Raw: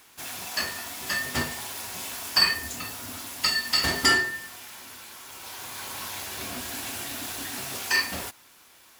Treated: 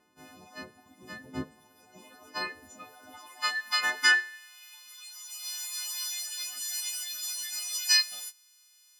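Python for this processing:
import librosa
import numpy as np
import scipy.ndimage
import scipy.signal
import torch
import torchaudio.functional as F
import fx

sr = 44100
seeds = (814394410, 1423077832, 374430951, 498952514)

y = fx.freq_snap(x, sr, grid_st=3)
y = fx.dereverb_blind(y, sr, rt60_s=1.7)
y = fx.filter_sweep_bandpass(y, sr, from_hz=230.0, to_hz=5000.0, start_s=1.76, end_s=5.24, q=1.1)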